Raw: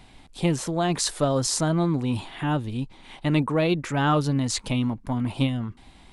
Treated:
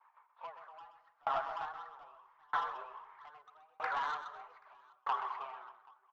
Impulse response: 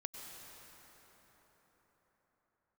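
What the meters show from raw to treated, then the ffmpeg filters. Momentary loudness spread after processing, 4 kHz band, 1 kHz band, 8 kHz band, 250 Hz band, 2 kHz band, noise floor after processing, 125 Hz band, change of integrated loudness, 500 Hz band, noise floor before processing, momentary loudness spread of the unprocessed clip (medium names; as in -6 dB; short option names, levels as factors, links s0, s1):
19 LU, -22.5 dB, -6.5 dB, under -40 dB, under -40 dB, -10.0 dB, -71 dBFS, under -40 dB, -14.5 dB, -21.0 dB, -52 dBFS, 8 LU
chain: -filter_complex "[0:a]lowpass=f=1200:w=0.5412,lowpass=f=1200:w=1.3066,agate=range=0.0224:threshold=0.01:ratio=3:detection=peak,highpass=f=820:w=0.5412,highpass=f=820:w=1.3066,acompressor=threshold=0.00631:ratio=3,aphaser=in_gain=1:out_gain=1:delay=4.3:decay=0.46:speed=1.6:type=triangular,afreqshift=140,aresample=16000,asoftclip=type=tanh:threshold=0.0112,aresample=44100,aecho=1:1:127|261|781:0.473|0.237|0.596,asplit=2[s0][s1];[1:a]atrim=start_sample=2205,lowshelf=f=120:g=9.5[s2];[s1][s2]afir=irnorm=-1:irlink=0,volume=0.501[s3];[s0][s3]amix=inputs=2:normalize=0,aeval=exprs='val(0)*pow(10,-37*if(lt(mod(0.79*n/s,1),2*abs(0.79)/1000),1-mod(0.79*n/s,1)/(2*abs(0.79)/1000),(mod(0.79*n/s,1)-2*abs(0.79)/1000)/(1-2*abs(0.79)/1000))/20)':c=same,volume=3.98"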